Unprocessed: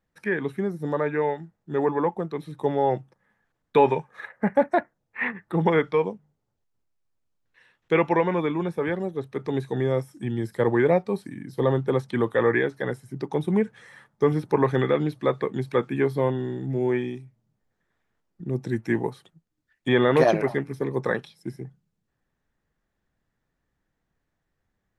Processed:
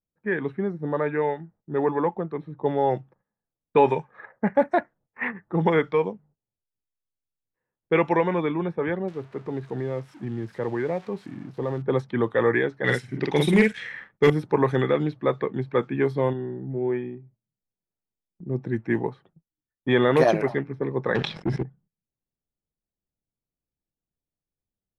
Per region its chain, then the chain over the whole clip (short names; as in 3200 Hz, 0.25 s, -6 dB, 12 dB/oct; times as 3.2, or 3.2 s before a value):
9.08–11.82 switching spikes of -24 dBFS + compressor 2:1, threshold -28 dBFS
12.84–14.3 resonant high shelf 1500 Hz +11 dB, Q 1.5 + doubler 48 ms -3 dB + sample leveller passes 1
16.33–18.5 high shelf 3400 Hz -11 dB + resonator 190 Hz, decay 0.16 s, mix 40%
21.15–21.63 sample leveller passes 3 + air absorption 51 m + sustainer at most 65 dB/s
whole clip: low-pass opened by the level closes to 690 Hz, open at -16 dBFS; gate -55 dBFS, range -14 dB